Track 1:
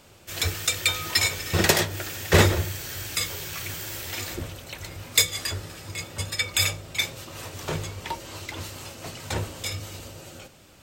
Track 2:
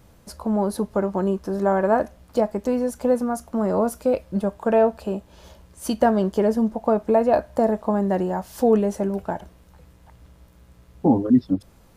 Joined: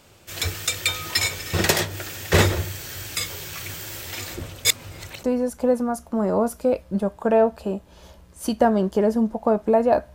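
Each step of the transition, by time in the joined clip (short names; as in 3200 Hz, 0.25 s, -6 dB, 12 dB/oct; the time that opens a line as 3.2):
track 1
4.65–5.23 reverse
5.23 switch to track 2 from 2.64 s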